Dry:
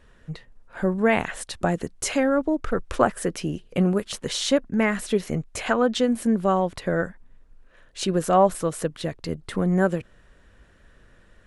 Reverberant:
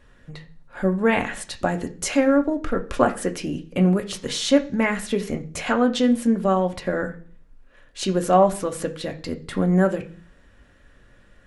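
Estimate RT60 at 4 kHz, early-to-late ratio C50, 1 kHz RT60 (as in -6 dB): 0.50 s, 15.0 dB, 0.40 s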